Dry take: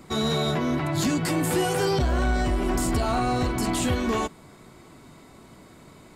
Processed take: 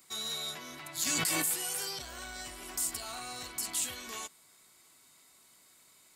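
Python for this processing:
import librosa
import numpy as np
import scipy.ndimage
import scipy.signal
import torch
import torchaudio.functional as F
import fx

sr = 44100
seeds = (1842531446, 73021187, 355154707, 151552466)

y = F.preemphasis(torch.from_numpy(x), 0.97).numpy()
y = fx.env_flatten(y, sr, amount_pct=100, at=(1.05, 1.51), fade=0.02)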